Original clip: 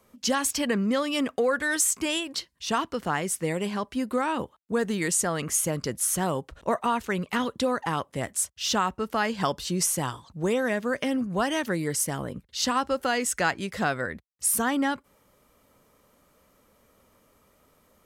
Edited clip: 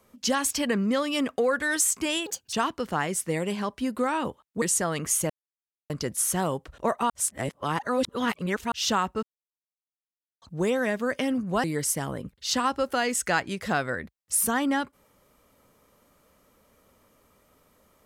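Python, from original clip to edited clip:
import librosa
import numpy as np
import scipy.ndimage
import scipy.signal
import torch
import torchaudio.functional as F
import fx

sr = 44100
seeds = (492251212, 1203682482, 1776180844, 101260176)

y = fx.edit(x, sr, fx.speed_span(start_s=2.26, length_s=0.41, speed=1.53),
    fx.cut(start_s=4.76, length_s=0.29),
    fx.insert_silence(at_s=5.73, length_s=0.6),
    fx.reverse_span(start_s=6.93, length_s=1.62),
    fx.silence(start_s=9.06, length_s=1.19),
    fx.cut(start_s=11.47, length_s=0.28), tone=tone)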